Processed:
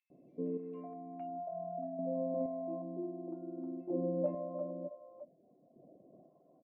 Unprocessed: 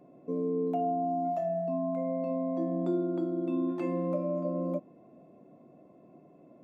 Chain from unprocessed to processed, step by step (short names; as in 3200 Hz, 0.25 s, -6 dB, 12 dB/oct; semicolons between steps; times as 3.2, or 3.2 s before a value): reverb removal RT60 0.59 s; chopper 0.53 Hz, depth 60%, duty 25%; low-pass sweep 2300 Hz -> 650 Hz, 0.88–1.39; three bands offset in time highs, lows, mids 0.1/0.46 s, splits 690/3200 Hz; gain -4 dB